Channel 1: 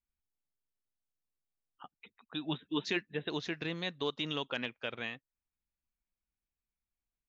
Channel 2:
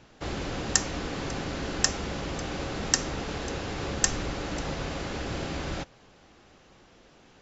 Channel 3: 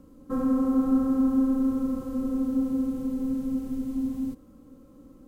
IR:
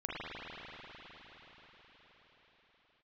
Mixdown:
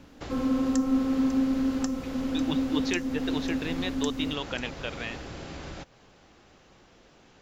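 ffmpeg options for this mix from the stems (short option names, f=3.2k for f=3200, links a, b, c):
-filter_complex "[0:a]volume=3dB[a];[1:a]acompressor=threshold=-36dB:ratio=6,volume=-0.5dB[b];[2:a]volume=-2dB[c];[a][b][c]amix=inputs=3:normalize=0"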